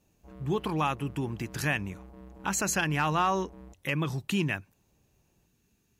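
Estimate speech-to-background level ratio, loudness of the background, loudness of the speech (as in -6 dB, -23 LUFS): 19.5 dB, -50.0 LUFS, -30.5 LUFS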